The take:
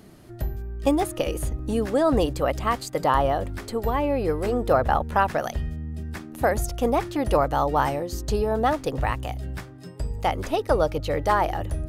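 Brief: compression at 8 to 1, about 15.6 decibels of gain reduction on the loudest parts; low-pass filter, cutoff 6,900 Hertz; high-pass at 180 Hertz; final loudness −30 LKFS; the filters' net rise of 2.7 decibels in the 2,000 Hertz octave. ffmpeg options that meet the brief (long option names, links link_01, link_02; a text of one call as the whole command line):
ffmpeg -i in.wav -af "highpass=180,lowpass=6900,equalizer=frequency=2000:width_type=o:gain=3.5,acompressor=threshold=-32dB:ratio=8,volume=7dB" out.wav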